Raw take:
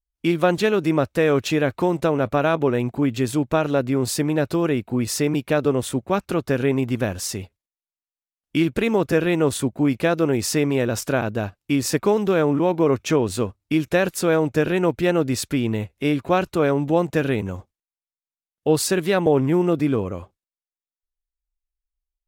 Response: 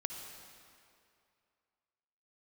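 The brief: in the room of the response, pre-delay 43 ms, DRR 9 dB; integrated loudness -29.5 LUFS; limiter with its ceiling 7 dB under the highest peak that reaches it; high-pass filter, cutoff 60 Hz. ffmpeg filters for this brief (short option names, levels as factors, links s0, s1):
-filter_complex "[0:a]highpass=60,alimiter=limit=0.211:level=0:latency=1,asplit=2[s0][s1];[1:a]atrim=start_sample=2205,adelay=43[s2];[s1][s2]afir=irnorm=-1:irlink=0,volume=0.355[s3];[s0][s3]amix=inputs=2:normalize=0,volume=0.501"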